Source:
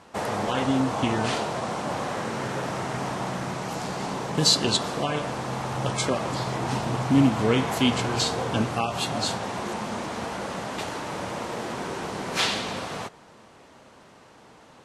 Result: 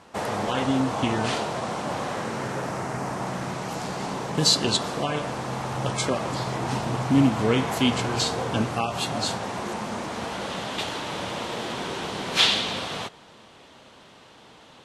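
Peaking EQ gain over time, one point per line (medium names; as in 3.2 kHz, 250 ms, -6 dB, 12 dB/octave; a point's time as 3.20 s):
peaking EQ 3.4 kHz 0.81 oct
2.12 s +1 dB
3.04 s -8 dB
3.44 s 0 dB
10.05 s 0 dB
10.53 s +9 dB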